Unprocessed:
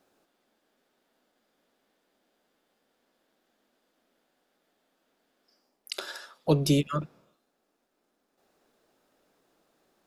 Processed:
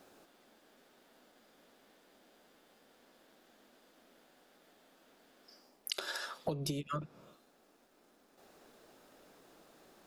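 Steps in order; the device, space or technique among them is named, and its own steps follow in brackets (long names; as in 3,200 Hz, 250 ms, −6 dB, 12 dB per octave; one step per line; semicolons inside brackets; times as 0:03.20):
serial compression, leveller first (downward compressor 3 to 1, threshold −25 dBFS, peak gain reduction 6.5 dB; downward compressor 10 to 1, threshold −43 dBFS, peak gain reduction 20 dB)
level +8.5 dB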